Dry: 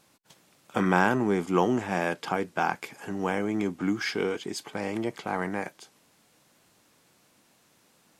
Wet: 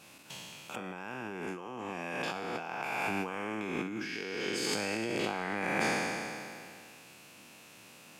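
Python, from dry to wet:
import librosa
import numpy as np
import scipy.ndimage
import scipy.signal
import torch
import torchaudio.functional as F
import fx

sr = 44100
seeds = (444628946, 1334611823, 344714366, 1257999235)

y = fx.spec_trails(x, sr, decay_s=2.39)
y = scipy.signal.sosfilt(scipy.signal.butter(2, 77.0, 'highpass', fs=sr, output='sos'), y)
y = fx.peak_eq(y, sr, hz=2600.0, db=10.5, octaves=0.31)
y = fx.over_compress(y, sr, threshold_db=-33.0, ratio=-1.0)
y = y * librosa.db_to_amplitude(-3.5)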